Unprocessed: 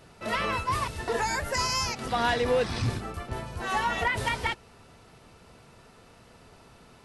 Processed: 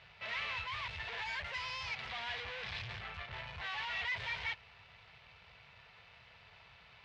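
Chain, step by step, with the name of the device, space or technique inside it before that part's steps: scooped metal amplifier (tube stage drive 40 dB, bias 0.75; speaker cabinet 76–3600 Hz, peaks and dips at 240 Hz -3 dB, 1300 Hz -5 dB, 2200 Hz +4 dB; passive tone stack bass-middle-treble 10-0-10); gain +9 dB

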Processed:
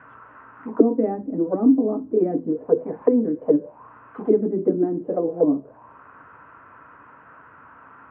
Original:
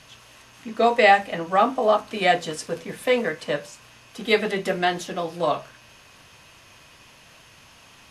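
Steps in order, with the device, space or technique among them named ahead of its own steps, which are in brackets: envelope filter bass rig (envelope low-pass 290–1500 Hz down, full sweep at -21 dBFS; speaker cabinet 65–2300 Hz, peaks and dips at 280 Hz +10 dB, 450 Hz +6 dB, 970 Hz +6 dB, 1400 Hz +4 dB); gain -2.5 dB

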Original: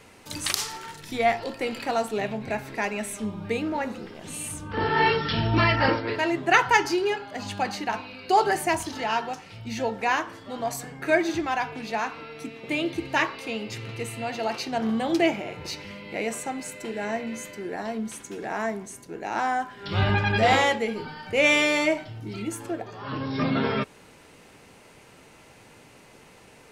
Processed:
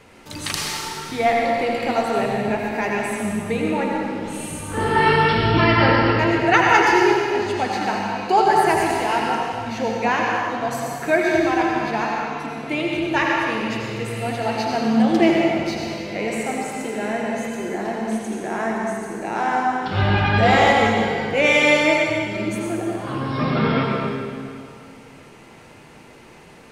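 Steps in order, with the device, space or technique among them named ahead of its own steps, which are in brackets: swimming-pool hall (reverb RT60 2.2 s, pre-delay 73 ms, DRR -2 dB; high shelf 3900 Hz -6.5 dB); gain +3 dB

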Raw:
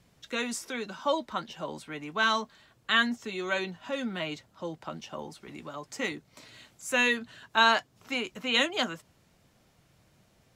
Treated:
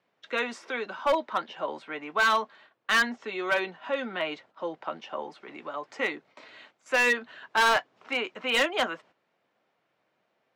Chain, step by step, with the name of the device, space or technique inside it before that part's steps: walkie-talkie (BPF 420–2500 Hz; hard clip -24 dBFS, distortion -9 dB; gate -60 dBFS, range -10 dB); gain +6 dB

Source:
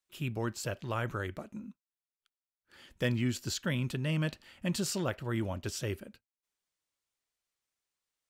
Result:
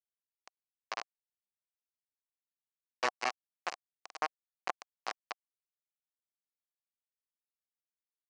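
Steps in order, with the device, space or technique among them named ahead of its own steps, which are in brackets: 4.87–5.33 HPF 67 Hz 6 dB/oct; hand-held game console (bit-crush 4-bit; speaker cabinet 500–5700 Hz, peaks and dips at 750 Hz +8 dB, 1100 Hz +7 dB, 3500 Hz -10 dB); gain -1 dB

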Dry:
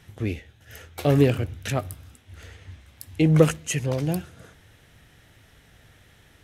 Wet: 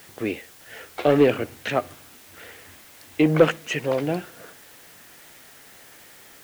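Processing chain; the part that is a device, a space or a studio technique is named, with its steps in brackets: tape answering machine (BPF 310–2900 Hz; soft clip -12.5 dBFS, distortion -15 dB; wow and flutter; white noise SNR 24 dB); gain +6.5 dB

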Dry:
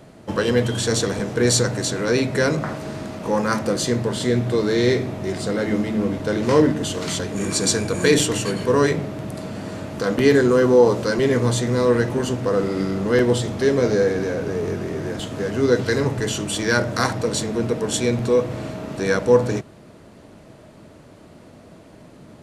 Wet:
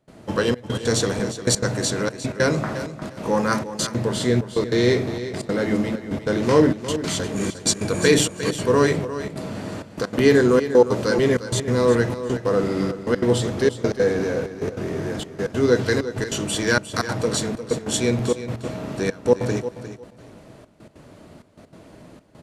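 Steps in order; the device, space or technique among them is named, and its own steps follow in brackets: trance gate with a delay (step gate ".xxxxxx..x" 194 bpm -24 dB; feedback echo 0.354 s, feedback 20%, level -12 dB)

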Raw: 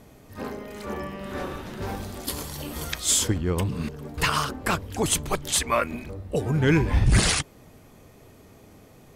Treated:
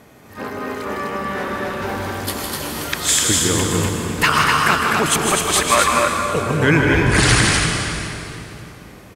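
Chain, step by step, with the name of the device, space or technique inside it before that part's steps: stadium PA (HPF 130 Hz 6 dB/oct; bell 1600 Hz +6 dB 1.5 oct; loudspeakers at several distances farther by 54 m -6 dB, 86 m -4 dB; reverb RT60 3.0 s, pre-delay 0.115 s, DRR 3.5 dB); 3.71–4.33 high shelf 11000 Hz +5 dB; gain +4 dB

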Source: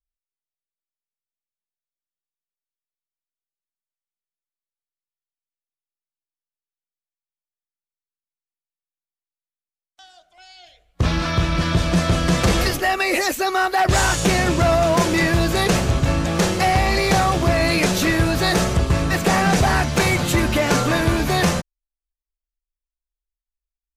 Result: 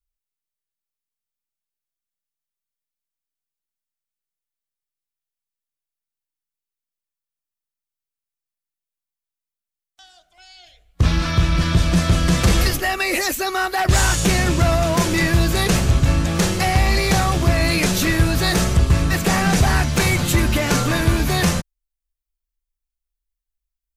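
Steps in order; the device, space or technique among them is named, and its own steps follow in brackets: smiley-face EQ (low shelf 93 Hz +7 dB; bell 620 Hz -4 dB 1.7 oct; high shelf 9000 Hz +6 dB)

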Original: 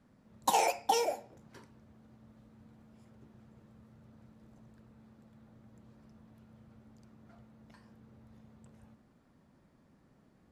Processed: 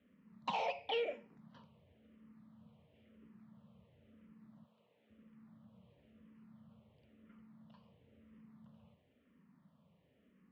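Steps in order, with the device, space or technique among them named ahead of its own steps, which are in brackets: 4.64–5.1 Bessel high-pass 410 Hz, order 2; barber-pole phaser into a guitar amplifier (endless phaser -0.98 Hz; soft clip -26.5 dBFS, distortion -12 dB; speaker cabinet 100–3400 Hz, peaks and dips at 120 Hz -7 dB, 180 Hz +5 dB, 340 Hz -10 dB, 800 Hz -8 dB, 1500 Hz -7 dB, 3000 Hz +6 dB)

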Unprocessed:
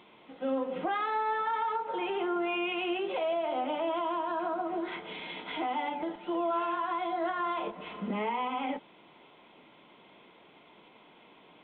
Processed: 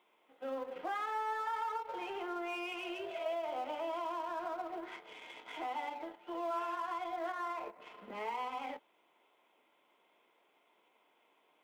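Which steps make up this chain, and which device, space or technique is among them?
2.79–3.24 spectral repair 430–1200 Hz both; 7.32–7.8 elliptic band-pass 150–2400 Hz; phone line with mismatched companding (BPF 390–3400 Hz; G.711 law mismatch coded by A); low shelf 120 Hz -6 dB; gain -4.5 dB

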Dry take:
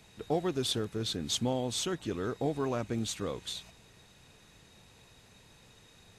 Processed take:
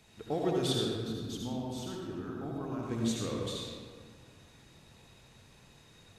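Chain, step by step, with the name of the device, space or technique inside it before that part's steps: 0.93–2.83 graphic EQ 125/500/2000/4000/8000 Hz -6/-11/-9/-7/-11 dB; stairwell (reverb RT60 1.8 s, pre-delay 61 ms, DRR -1.5 dB); gain -4 dB

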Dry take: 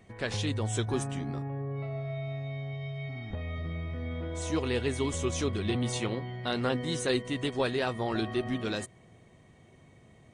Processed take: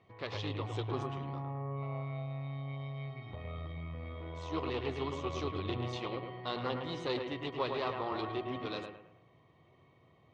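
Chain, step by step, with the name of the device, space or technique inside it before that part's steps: analogue delay pedal into a guitar amplifier (analogue delay 0.108 s, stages 2048, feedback 37%, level -5.5 dB; tube stage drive 23 dB, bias 0.75; speaker cabinet 90–4500 Hz, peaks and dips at 220 Hz -10 dB, 1100 Hz +9 dB, 1600 Hz -9 dB); gain -2 dB

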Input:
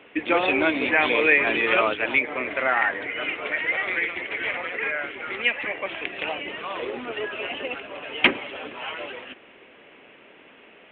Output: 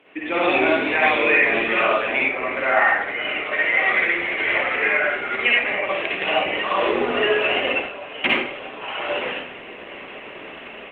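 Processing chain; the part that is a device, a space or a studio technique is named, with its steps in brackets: far-field microphone of a smart speaker (reverb RT60 0.55 s, pre-delay 49 ms, DRR -5 dB; HPF 93 Hz 6 dB/oct; AGC gain up to 14 dB; gain -4.5 dB; Opus 20 kbps 48000 Hz)

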